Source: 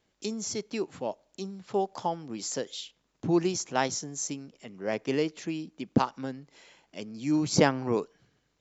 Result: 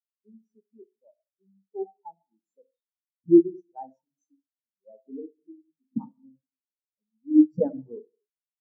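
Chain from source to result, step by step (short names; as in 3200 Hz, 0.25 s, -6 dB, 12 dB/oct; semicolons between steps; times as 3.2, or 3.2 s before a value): notches 50/100/150/200/250/300/350/400/450 Hz; on a send at -4 dB: reverb RT60 1.2 s, pre-delay 37 ms; on the sum: spectral expander 4:1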